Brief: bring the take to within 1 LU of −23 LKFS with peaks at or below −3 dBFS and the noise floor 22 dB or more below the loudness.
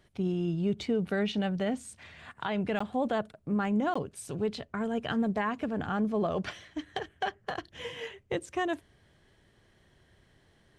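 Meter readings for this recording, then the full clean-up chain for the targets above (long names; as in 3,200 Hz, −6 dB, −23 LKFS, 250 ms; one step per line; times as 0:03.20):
number of dropouts 2; longest dropout 15 ms; integrated loudness −32.5 LKFS; sample peak −20.5 dBFS; target loudness −23.0 LKFS
→ repair the gap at 0:02.79/0:03.94, 15 ms
level +9.5 dB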